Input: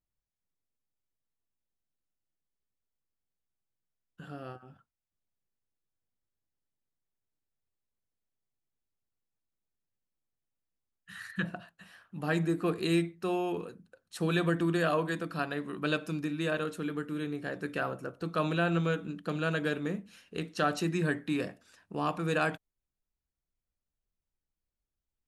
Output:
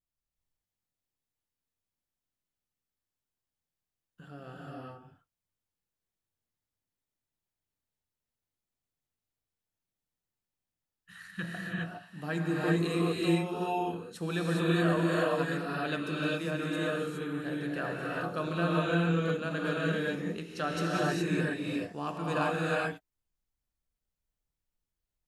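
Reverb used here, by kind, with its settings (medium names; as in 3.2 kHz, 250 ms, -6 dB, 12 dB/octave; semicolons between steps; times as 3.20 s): gated-style reverb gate 440 ms rising, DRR -5 dB; trim -5 dB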